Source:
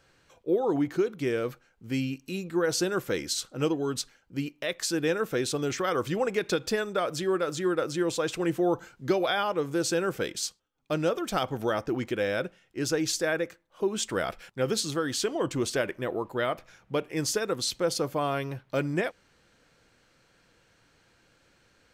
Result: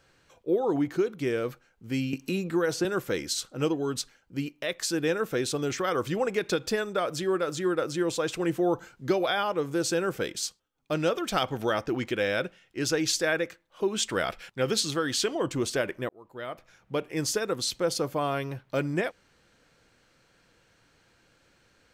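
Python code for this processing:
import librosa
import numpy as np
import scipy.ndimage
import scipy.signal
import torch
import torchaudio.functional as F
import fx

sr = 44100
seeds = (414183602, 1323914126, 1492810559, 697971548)

y = fx.band_squash(x, sr, depth_pct=70, at=(2.13, 2.85))
y = fx.peak_eq(y, sr, hz=3000.0, db=4.5, octaves=2.1, at=(10.95, 15.35))
y = fx.edit(y, sr, fx.fade_in_span(start_s=16.09, length_s=0.98), tone=tone)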